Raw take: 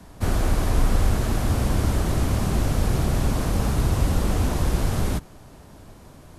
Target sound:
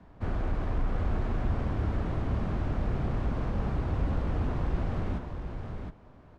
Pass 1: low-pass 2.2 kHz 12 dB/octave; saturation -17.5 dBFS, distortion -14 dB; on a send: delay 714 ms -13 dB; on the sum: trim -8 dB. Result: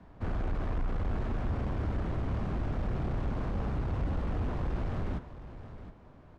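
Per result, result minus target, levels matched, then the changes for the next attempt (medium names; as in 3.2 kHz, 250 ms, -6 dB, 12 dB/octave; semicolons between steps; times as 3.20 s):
saturation: distortion +10 dB; echo-to-direct -7 dB
change: saturation -10 dBFS, distortion -24 dB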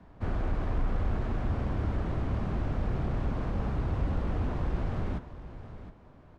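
echo-to-direct -7 dB
change: delay 714 ms -6 dB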